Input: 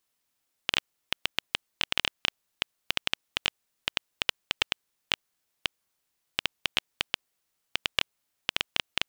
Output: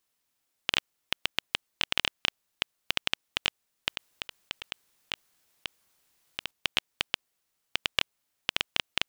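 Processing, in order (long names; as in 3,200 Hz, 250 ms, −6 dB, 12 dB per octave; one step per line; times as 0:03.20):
0:03.89–0:06.51: compressor whose output falls as the input rises −33 dBFS, ratio −0.5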